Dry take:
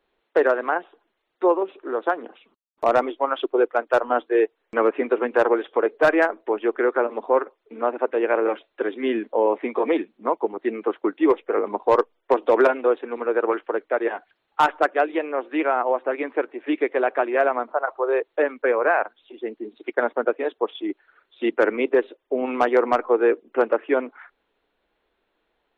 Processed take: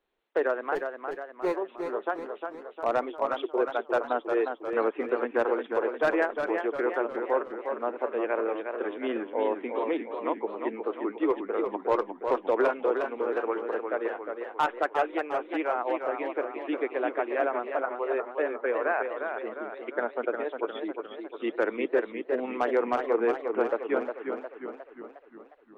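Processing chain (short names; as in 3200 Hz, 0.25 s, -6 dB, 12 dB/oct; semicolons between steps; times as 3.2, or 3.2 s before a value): 0.75–1.56 median filter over 41 samples; warbling echo 0.357 s, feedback 54%, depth 90 cents, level -6 dB; gain -8 dB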